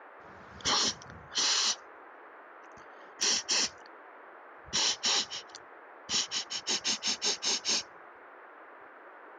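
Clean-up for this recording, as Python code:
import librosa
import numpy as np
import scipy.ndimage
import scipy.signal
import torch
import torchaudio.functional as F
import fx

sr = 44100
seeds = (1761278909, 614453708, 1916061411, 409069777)

y = fx.fix_interpolate(x, sr, at_s=(3.22,), length_ms=3.2)
y = fx.noise_reduce(y, sr, print_start_s=8.08, print_end_s=8.58, reduce_db=26.0)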